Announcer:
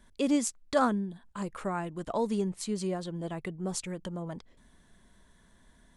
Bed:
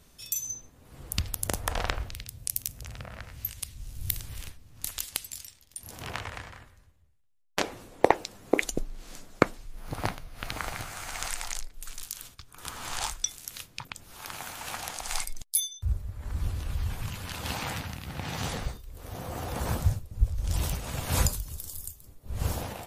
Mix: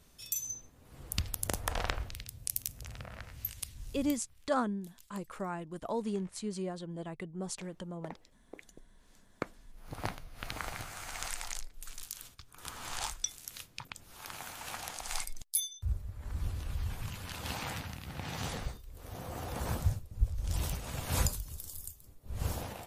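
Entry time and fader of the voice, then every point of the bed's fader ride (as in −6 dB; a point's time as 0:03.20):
3.75 s, −5.0 dB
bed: 0:03.95 −4 dB
0:04.23 −26 dB
0:08.70 −26 dB
0:10.15 −5 dB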